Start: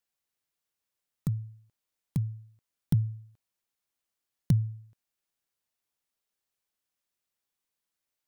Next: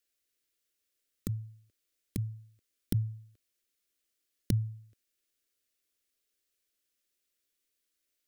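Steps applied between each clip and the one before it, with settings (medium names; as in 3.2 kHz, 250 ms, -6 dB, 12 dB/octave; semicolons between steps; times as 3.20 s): static phaser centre 360 Hz, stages 4; trim +5 dB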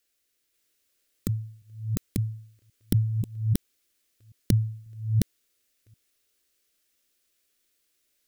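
chunks repeated in reverse 540 ms, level -1 dB; trim +6.5 dB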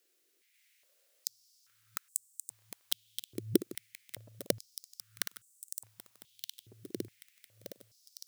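backward echo that repeats 611 ms, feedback 74%, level -8.5 dB; step-sequenced high-pass 2.4 Hz 360–7900 Hz; trim +1 dB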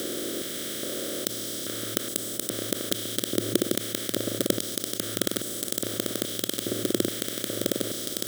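spectral levelling over time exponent 0.2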